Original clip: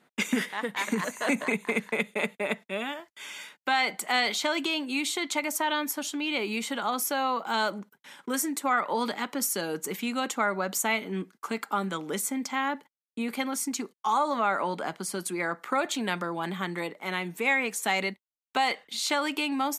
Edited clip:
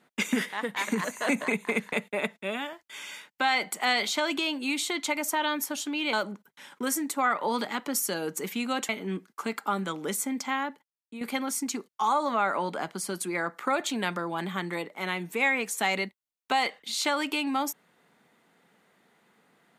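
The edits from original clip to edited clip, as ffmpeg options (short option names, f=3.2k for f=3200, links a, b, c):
-filter_complex "[0:a]asplit=5[a][b][c][d][e];[a]atrim=end=1.932[f];[b]atrim=start=2.198:end=6.402[g];[c]atrim=start=7.598:end=10.362[h];[d]atrim=start=10.938:end=13.26,asetpts=PTS-STARTPTS,afade=t=out:st=1.622:d=0.7:c=qua:silence=0.334965[i];[e]atrim=start=13.26,asetpts=PTS-STARTPTS,afade=t=in:d=0.004:c=hsin:silence=0.334965[j];[f][g]acrossfade=d=0.004:c1=hsin:c2=hsin[k];[k][h]acrossfade=d=0.004:c1=hsin:c2=hsin[l];[i][j]concat=n=2:v=0:a=1[m];[l][m]acrossfade=d=0.004:c1=hsin:c2=hsin"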